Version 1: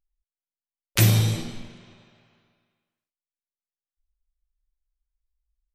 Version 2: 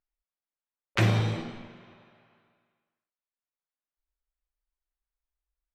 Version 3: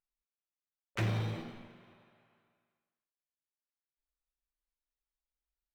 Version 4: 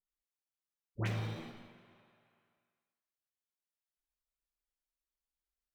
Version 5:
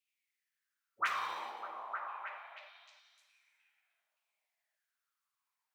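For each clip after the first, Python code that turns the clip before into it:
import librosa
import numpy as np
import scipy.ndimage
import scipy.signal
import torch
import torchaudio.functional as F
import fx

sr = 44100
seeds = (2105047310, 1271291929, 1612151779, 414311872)

y1 = scipy.signal.sosfilt(scipy.signal.butter(2, 1400.0, 'lowpass', fs=sr, output='sos'), x)
y1 = fx.tilt_eq(y1, sr, slope=3.0)
y1 = y1 * librosa.db_to_amplitude(3.5)
y2 = scipy.signal.medfilt(y1, 5)
y2 = 10.0 ** (-18.0 / 20.0) * np.tanh(y2 / 10.0 ** (-18.0 / 20.0))
y2 = y2 * librosa.db_to_amplitude(-7.0)
y3 = fx.dispersion(y2, sr, late='highs', ms=86.0, hz=1000.0)
y3 = y3 * librosa.db_to_amplitude(-3.5)
y4 = fx.filter_lfo_highpass(y3, sr, shape='saw_down', hz=0.48, low_hz=600.0, high_hz=2600.0, q=7.1)
y4 = fx.echo_stepped(y4, sr, ms=303, hz=450.0, octaves=0.7, feedback_pct=70, wet_db=-0.5)
y4 = y4 * librosa.db_to_amplitude(3.0)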